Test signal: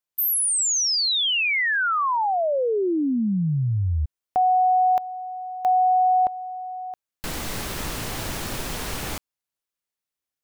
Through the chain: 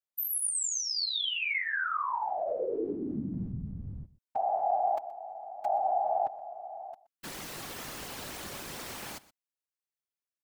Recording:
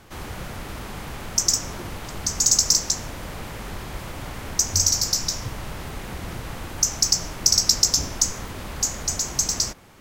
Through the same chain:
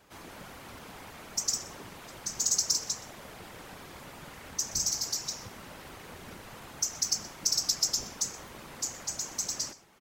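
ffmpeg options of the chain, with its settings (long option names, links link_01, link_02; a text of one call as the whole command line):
ffmpeg -i in.wav -af "highpass=frequency=200:poles=1,afftfilt=real='hypot(re,im)*cos(2*PI*random(0))':imag='hypot(re,im)*sin(2*PI*random(1))':win_size=512:overlap=0.75,aecho=1:1:123:0.106,volume=-3.5dB" out.wav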